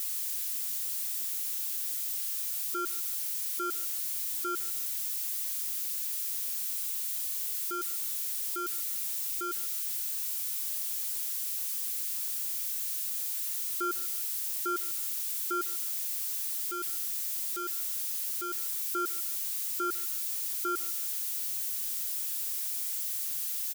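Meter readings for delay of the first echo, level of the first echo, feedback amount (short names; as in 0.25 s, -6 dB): 0.151 s, -22.0 dB, 32%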